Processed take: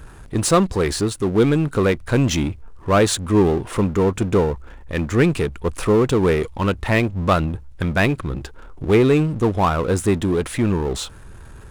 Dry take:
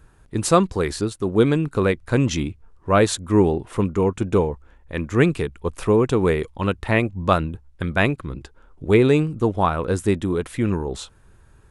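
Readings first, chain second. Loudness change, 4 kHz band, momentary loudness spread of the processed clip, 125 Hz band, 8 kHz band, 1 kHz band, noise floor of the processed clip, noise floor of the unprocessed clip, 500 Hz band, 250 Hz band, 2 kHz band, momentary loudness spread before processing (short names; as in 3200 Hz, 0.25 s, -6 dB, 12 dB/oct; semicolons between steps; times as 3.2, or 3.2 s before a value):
+1.5 dB, +3.5 dB, 10 LU, +2.5 dB, +4.5 dB, +1.0 dB, -41 dBFS, -53 dBFS, +1.5 dB, +2.0 dB, +1.5 dB, 12 LU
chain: power-law curve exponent 0.7; gain -2 dB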